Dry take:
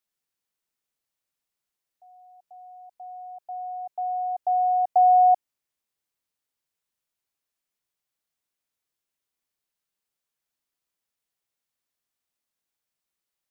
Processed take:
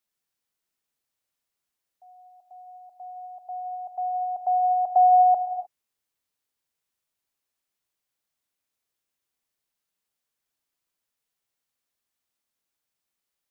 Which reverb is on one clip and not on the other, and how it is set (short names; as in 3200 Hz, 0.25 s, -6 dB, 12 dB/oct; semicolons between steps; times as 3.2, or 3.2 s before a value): non-linear reverb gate 0.33 s flat, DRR 8.5 dB; gain +1 dB